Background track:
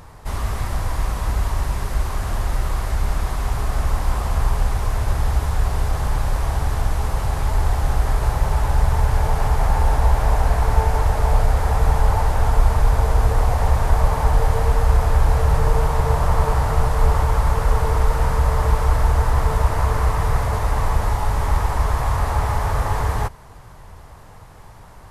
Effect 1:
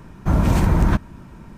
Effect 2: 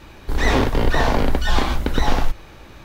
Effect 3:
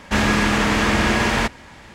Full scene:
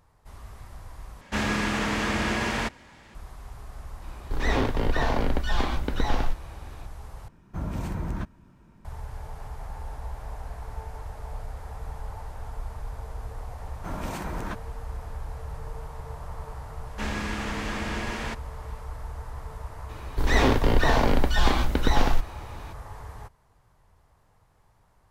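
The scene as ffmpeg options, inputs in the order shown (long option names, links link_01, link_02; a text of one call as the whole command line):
ffmpeg -i bed.wav -i cue0.wav -i cue1.wav -i cue2.wav -filter_complex "[3:a]asplit=2[link_01][link_02];[2:a]asplit=2[link_03][link_04];[1:a]asplit=2[link_05][link_06];[0:a]volume=-20dB[link_07];[link_03]highshelf=frequency=5900:gain=-5.5[link_08];[link_06]highpass=frequency=530:poles=1[link_09];[link_07]asplit=3[link_10][link_11][link_12];[link_10]atrim=end=1.214[link_13];[link_01]atrim=end=1.94,asetpts=PTS-STARTPTS,volume=-8.5dB[link_14];[link_11]atrim=start=3.146:end=7.284[link_15];[link_05]atrim=end=1.57,asetpts=PTS-STARTPTS,volume=-14.5dB[link_16];[link_12]atrim=start=8.846[link_17];[link_08]atrim=end=2.84,asetpts=PTS-STARTPTS,volume=-7dB,afade=type=in:duration=0.004:curve=hsin,afade=type=out:start_time=2.836:duration=0.004:curve=hsin,adelay=4020[link_18];[link_09]atrim=end=1.57,asetpts=PTS-STARTPTS,volume=-8.5dB,afade=type=in:duration=0.004:curve=hsin,afade=type=out:start_time=1.566:duration=0.004:curve=hsin,adelay=13580[link_19];[link_02]atrim=end=1.94,asetpts=PTS-STARTPTS,volume=-14dB,afade=type=in:duration=0.004:curve=hsin,afade=type=out:start_time=1.936:duration=0.004:curve=hsin,adelay=16870[link_20];[link_04]atrim=end=2.84,asetpts=PTS-STARTPTS,volume=-3dB,afade=type=in:duration=0.004:curve=hsin,afade=type=out:start_time=2.836:duration=0.004:curve=hsin,adelay=19890[link_21];[link_13][link_14]acrossfade=duration=0.004:curve1=hsin:curve2=hsin[link_22];[link_22][link_15]acrossfade=duration=0.004:curve1=hsin:curve2=hsin[link_23];[link_23][link_16]acrossfade=duration=0.004:curve1=hsin:curve2=hsin[link_24];[link_24][link_17]acrossfade=duration=0.004:curve1=hsin:curve2=hsin[link_25];[link_25][link_18][link_19][link_20][link_21]amix=inputs=5:normalize=0" out.wav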